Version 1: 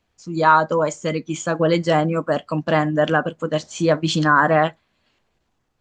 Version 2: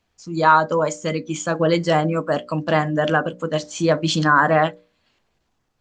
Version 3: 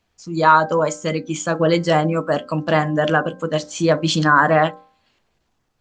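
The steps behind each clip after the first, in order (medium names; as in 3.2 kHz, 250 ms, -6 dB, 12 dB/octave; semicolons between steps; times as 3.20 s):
peaking EQ 5.3 kHz +2.5 dB; hum notches 60/120/180/240/300/360/420/480/540/600 Hz
de-hum 262.3 Hz, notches 6; trim +1.5 dB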